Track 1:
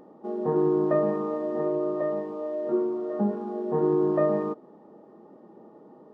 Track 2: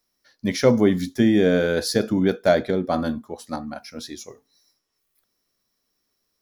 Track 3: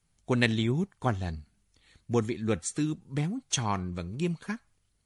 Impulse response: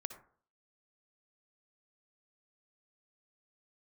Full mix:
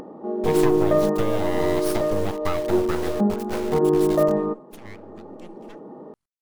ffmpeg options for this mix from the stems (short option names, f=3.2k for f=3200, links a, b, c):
-filter_complex "[0:a]lowpass=f=1.7k:p=1,volume=2.5dB,asplit=2[a][b];[b]volume=-7dB[c];[1:a]acrusher=bits=5:mix=0:aa=0.000001,volume=0dB[d];[2:a]equalizer=f=1.1k:w=1.5:g=9,adelay=1200,volume=-18.5dB[e];[d][e]amix=inputs=2:normalize=0,aeval=exprs='abs(val(0))':c=same,acompressor=threshold=-22dB:ratio=4,volume=0dB[f];[3:a]atrim=start_sample=2205[g];[c][g]afir=irnorm=-1:irlink=0[h];[a][f][h]amix=inputs=3:normalize=0,acompressor=mode=upward:threshold=-32dB:ratio=2.5"